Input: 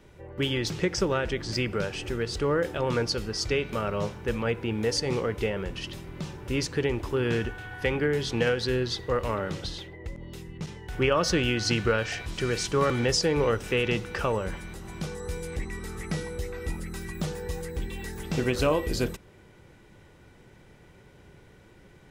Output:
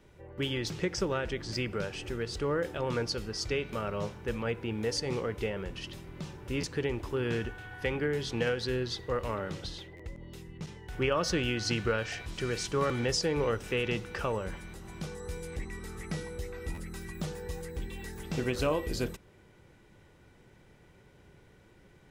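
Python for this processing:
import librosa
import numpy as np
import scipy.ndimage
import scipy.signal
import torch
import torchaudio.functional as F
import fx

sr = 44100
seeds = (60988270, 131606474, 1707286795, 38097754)

y = fx.buffer_glitch(x, sr, at_s=(6.6, 9.96, 16.74), block=512, repeats=2)
y = F.gain(torch.from_numpy(y), -5.0).numpy()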